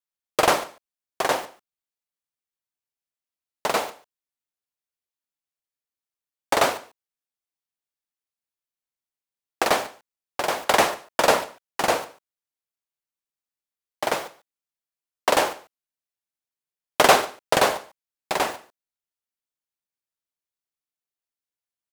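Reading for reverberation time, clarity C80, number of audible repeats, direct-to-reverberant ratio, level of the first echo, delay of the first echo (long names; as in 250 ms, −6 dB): no reverb audible, no reverb audible, 1, no reverb audible, −21.0 dB, 143 ms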